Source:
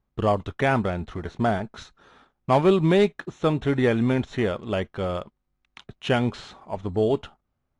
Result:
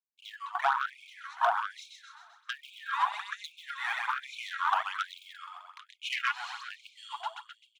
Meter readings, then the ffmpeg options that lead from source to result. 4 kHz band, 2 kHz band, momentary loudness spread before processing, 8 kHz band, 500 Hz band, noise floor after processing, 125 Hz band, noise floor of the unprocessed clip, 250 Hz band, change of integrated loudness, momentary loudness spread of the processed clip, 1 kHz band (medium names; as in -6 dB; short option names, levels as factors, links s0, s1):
-3.0 dB, -1.5 dB, 14 LU, no reading, -22.5 dB, -68 dBFS, under -40 dB, -77 dBFS, under -40 dB, -9.0 dB, 19 LU, -1.5 dB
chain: -filter_complex "[0:a]agate=range=0.0224:threshold=0.00282:ratio=3:detection=peak,lowshelf=f=690:t=q:w=3:g=-12.5,dynaudnorm=f=560:g=3:m=3.76,asplit=2[s0][s1];[s1]aecho=0:1:130|260|390|520|650|780|910:0.631|0.334|0.177|0.0939|0.0498|0.0264|0.014[s2];[s0][s2]amix=inputs=2:normalize=0,afwtdn=0.178,highpass=220,aphaser=in_gain=1:out_gain=1:delay=3.7:decay=0.55:speed=1.2:type=sinusoidal,acompressor=threshold=0.0631:ratio=12,asoftclip=type=tanh:threshold=0.1,afftfilt=real='re*gte(b*sr/1024,620*pow(2200/620,0.5+0.5*sin(2*PI*1.2*pts/sr)))':imag='im*gte(b*sr/1024,620*pow(2200/620,0.5+0.5*sin(2*PI*1.2*pts/sr)))':win_size=1024:overlap=0.75,volume=1.58"